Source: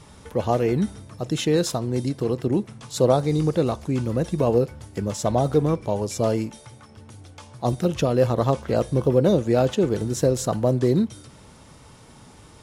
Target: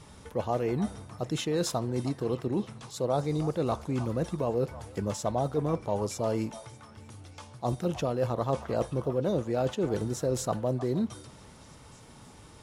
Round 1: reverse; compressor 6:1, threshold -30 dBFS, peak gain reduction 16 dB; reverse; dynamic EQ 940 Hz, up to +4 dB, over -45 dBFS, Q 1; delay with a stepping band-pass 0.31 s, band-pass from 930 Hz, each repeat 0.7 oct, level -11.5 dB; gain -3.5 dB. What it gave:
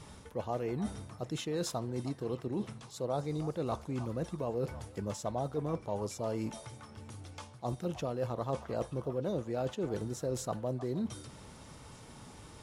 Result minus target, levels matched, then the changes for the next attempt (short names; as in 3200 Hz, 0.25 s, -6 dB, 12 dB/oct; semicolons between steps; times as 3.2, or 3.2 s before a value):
compressor: peak gain reduction +6 dB
change: compressor 6:1, threshold -22.5 dBFS, peak gain reduction 10 dB